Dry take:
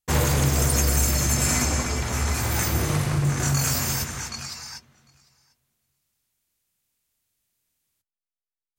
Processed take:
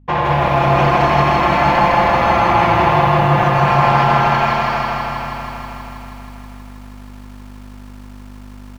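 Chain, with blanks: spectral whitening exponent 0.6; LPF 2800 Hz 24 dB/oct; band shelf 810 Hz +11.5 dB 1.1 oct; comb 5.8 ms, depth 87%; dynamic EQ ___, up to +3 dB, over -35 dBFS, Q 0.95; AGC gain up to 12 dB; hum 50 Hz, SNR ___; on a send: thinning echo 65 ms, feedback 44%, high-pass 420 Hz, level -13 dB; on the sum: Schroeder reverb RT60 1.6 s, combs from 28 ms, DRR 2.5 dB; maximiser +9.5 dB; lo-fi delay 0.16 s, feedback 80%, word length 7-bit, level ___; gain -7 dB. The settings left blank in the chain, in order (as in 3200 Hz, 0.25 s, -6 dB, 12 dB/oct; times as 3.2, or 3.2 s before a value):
220 Hz, 32 dB, -4 dB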